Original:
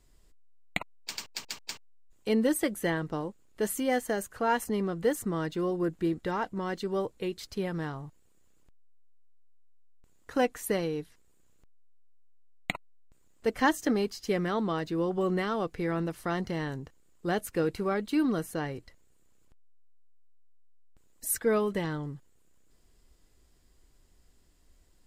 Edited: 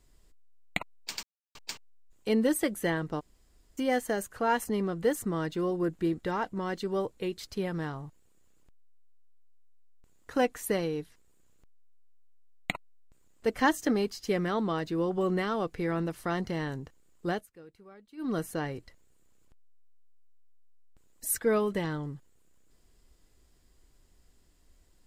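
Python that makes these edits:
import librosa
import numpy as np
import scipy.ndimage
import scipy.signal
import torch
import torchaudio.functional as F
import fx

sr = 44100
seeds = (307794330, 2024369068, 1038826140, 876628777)

y = fx.edit(x, sr, fx.silence(start_s=1.23, length_s=0.32),
    fx.room_tone_fill(start_s=3.2, length_s=0.58, crossfade_s=0.02),
    fx.fade_down_up(start_s=17.28, length_s=1.08, db=-23.0, fade_s=0.19), tone=tone)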